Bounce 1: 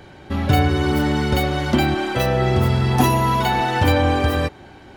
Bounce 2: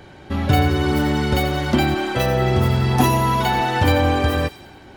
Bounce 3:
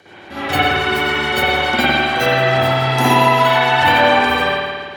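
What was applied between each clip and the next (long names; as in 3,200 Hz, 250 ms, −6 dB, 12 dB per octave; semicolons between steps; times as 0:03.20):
delay with a high-pass on its return 88 ms, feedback 53%, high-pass 3,400 Hz, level −9.5 dB
high-pass filter 980 Hz 6 dB per octave; rotating-speaker cabinet horn 7 Hz; spring reverb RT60 1.6 s, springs 53 ms, chirp 80 ms, DRR −10 dB; level +4 dB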